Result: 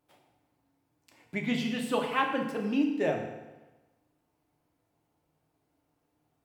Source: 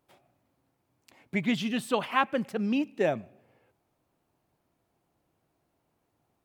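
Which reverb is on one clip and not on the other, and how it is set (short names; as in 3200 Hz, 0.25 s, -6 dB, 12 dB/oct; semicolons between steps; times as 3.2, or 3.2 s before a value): FDN reverb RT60 1.1 s, low-frequency decay 1×, high-frequency decay 0.85×, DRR 1 dB; gain -4 dB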